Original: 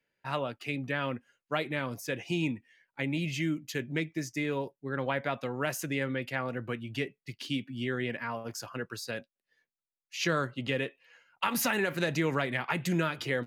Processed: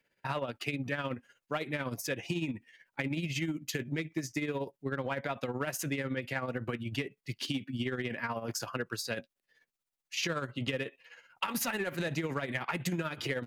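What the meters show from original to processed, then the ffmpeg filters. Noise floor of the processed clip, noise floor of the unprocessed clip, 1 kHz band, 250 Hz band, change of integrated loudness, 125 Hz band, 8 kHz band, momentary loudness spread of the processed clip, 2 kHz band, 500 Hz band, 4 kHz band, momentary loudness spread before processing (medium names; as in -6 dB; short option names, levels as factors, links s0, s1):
under -85 dBFS, under -85 dBFS, -3.0 dB, -2.5 dB, -2.5 dB, -2.0 dB, 0.0 dB, 5 LU, -3.0 dB, -3.0 dB, -1.0 dB, 9 LU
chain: -filter_complex "[0:a]tremolo=f=16:d=0.64,asplit=2[s0][s1];[s1]asoftclip=type=hard:threshold=0.0335,volume=0.562[s2];[s0][s2]amix=inputs=2:normalize=0,acompressor=threshold=0.02:ratio=6,volume=1.5"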